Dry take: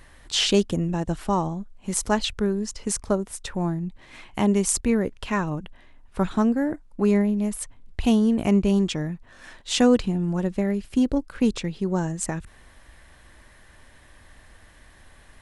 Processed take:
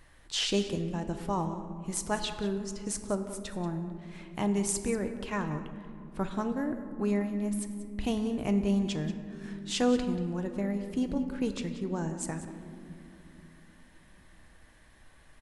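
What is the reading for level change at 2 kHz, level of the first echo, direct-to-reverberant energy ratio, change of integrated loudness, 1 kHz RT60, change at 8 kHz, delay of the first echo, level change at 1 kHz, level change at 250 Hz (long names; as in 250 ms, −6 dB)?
−7.0 dB, −14.5 dB, 6.5 dB, −8.0 dB, 2.5 s, −7.5 dB, 185 ms, −7.0 dB, −8.0 dB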